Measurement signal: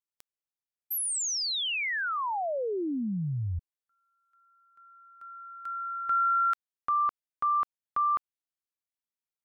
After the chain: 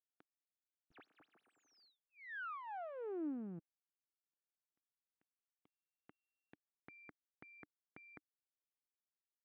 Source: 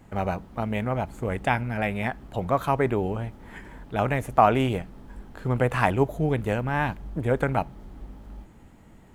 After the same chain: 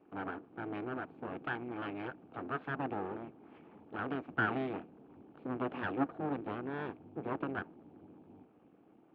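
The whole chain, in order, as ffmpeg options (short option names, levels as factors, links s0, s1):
-af "asuperstop=centerf=1500:order=8:qfactor=1.3,aeval=exprs='abs(val(0))':c=same,highpass=230,equalizer=f=300:t=q:w=4:g=5,equalizer=f=570:t=q:w=4:g=-7,equalizer=f=1000:t=q:w=4:g=-8,equalizer=f=2000:t=q:w=4:g=-8,lowpass=f=2200:w=0.5412,lowpass=f=2200:w=1.3066,volume=0.596"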